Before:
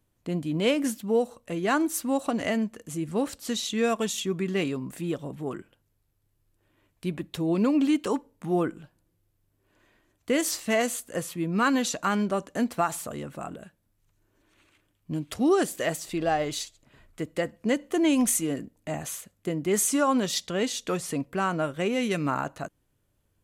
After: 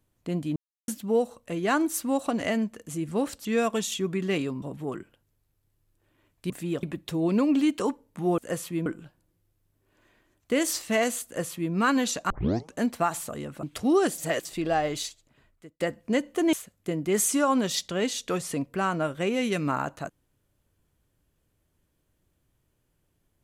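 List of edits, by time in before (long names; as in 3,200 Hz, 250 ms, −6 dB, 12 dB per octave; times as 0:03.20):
0:00.56–0:00.88: silence
0:03.45–0:03.71: remove
0:04.88–0:05.21: move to 0:07.09
0:11.03–0:11.51: duplicate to 0:08.64
0:12.08: tape start 0.44 s
0:13.41–0:15.19: remove
0:15.74–0:16.01: reverse
0:16.56–0:17.36: fade out
0:18.09–0:19.12: remove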